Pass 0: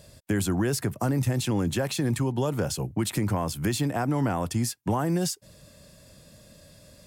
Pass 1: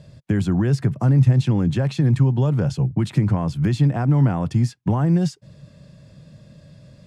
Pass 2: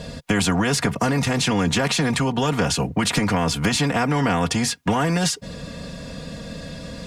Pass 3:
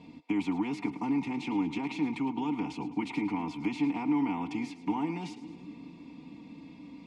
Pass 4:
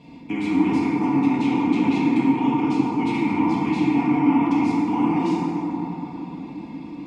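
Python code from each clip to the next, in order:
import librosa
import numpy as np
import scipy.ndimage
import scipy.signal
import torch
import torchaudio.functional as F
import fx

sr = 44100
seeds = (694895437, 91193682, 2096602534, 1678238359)

y1 = scipy.signal.sosfilt(scipy.signal.bessel(2, 3900.0, 'lowpass', norm='mag', fs=sr, output='sos'), x)
y1 = fx.peak_eq(y1, sr, hz=140.0, db=13.0, octaves=1.1)
y2 = y1 + 0.8 * np.pad(y1, (int(4.2 * sr / 1000.0), 0))[:len(y1)]
y2 = fx.spectral_comp(y2, sr, ratio=2.0)
y2 = F.gain(torch.from_numpy(y2), 1.5).numpy()
y3 = fx.vowel_filter(y2, sr, vowel='u')
y3 = fx.echo_split(y3, sr, split_hz=490.0, low_ms=407, high_ms=108, feedback_pct=52, wet_db=-14.5)
y4 = fx.rev_plate(y3, sr, seeds[0], rt60_s=4.1, hf_ratio=0.25, predelay_ms=0, drr_db=-7.5)
y4 = F.gain(torch.from_numpy(y4), 3.0).numpy()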